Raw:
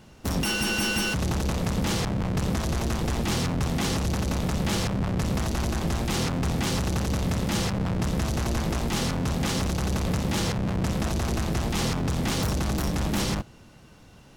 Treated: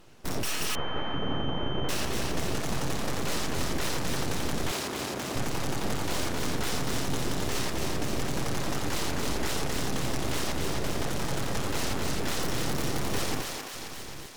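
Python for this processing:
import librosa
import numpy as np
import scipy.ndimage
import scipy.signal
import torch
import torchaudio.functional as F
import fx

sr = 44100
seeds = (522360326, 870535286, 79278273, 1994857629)

y = fx.reverse_delay(x, sr, ms=679, wet_db=-12.5)
y = np.abs(y)
y = fx.highpass(y, sr, hz=260.0, slope=6, at=(4.71, 5.36))
y = fx.echo_thinned(y, sr, ms=265, feedback_pct=64, hz=590.0, wet_db=-3.0)
y = fx.pwm(y, sr, carrier_hz=3100.0, at=(0.75, 1.89))
y = F.gain(torch.from_numpy(y), -2.0).numpy()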